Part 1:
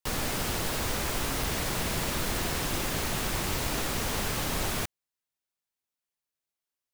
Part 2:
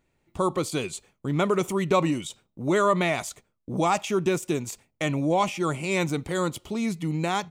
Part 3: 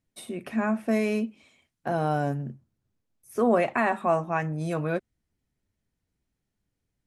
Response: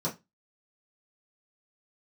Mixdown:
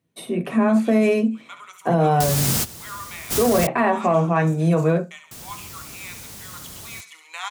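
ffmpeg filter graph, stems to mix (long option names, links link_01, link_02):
-filter_complex "[0:a]bass=frequency=250:gain=8,treble=frequency=4000:gain=12,adelay=2150,volume=-3.5dB,asplit=3[link_01][link_02][link_03];[link_01]atrim=end=3.67,asetpts=PTS-STARTPTS,afade=type=out:start_time=3.666:duration=0.004:curve=hsin[link_04];[link_02]atrim=start=3.67:end=5.31,asetpts=PTS-STARTPTS,volume=0[link_05];[link_03]atrim=start=5.31,asetpts=PTS-STARTPTS,afade=type=in:duration=0.004:curve=hsin[link_06];[link_04][link_05][link_06]concat=n=3:v=0:a=1[link_07];[1:a]highpass=frequency=1100:width=0.5412,highpass=frequency=1100:width=1.3066,adelay=100,volume=-6.5dB,afade=type=in:start_time=6.53:duration=0.27:silence=0.334965,asplit=3[link_08][link_09][link_10];[link_09]volume=-12dB[link_11];[link_10]volume=-9.5dB[link_12];[2:a]bandreject=frequency=7000:width=6.3,volume=0dB,asplit=3[link_13][link_14][link_15];[link_14]volume=-10dB[link_16];[link_15]apad=whole_len=400679[link_17];[link_07][link_17]sidechaingate=range=-18dB:threshold=-49dB:ratio=16:detection=peak[link_18];[3:a]atrim=start_sample=2205[link_19];[link_11][link_16]amix=inputs=2:normalize=0[link_20];[link_20][link_19]afir=irnorm=-1:irlink=0[link_21];[link_12]aecho=0:1:70|140|210|280|350|420|490:1|0.51|0.26|0.133|0.0677|0.0345|0.0176[link_22];[link_18][link_08][link_13][link_21][link_22]amix=inputs=5:normalize=0,acontrast=63,highpass=77,alimiter=limit=-9.5dB:level=0:latency=1:release=62"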